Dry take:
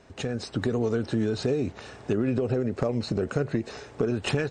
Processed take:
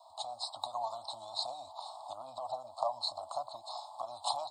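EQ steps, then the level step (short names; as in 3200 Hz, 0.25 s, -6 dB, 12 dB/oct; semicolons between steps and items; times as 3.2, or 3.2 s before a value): elliptic high-pass 650 Hz, stop band 40 dB; elliptic band-stop 1000–4100 Hz, stop band 40 dB; fixed phaser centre 1700 Hz, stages 6; +9.0 dB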